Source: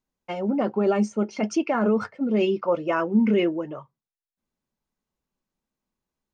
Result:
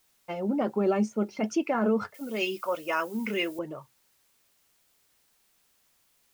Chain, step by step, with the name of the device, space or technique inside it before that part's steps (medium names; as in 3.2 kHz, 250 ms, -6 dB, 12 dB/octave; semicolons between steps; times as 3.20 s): plain cassette with noise reduction switched in (tape noise reduction on one side only decoder only; wow and flutter; white noise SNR 39 dB); 2.14–3.59 s: tilt EQ +4.5 dB/octave; trim -3.5 dB